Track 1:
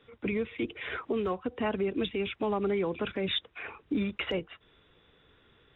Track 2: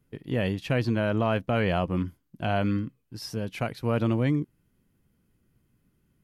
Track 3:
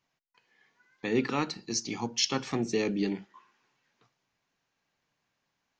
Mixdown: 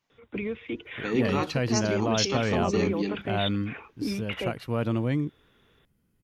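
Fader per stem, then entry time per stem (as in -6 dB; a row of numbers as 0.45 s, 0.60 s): -1.0 dB, -2.0 dB, 0.0 dB; 0.10 s, 0.85 s, 0.00 s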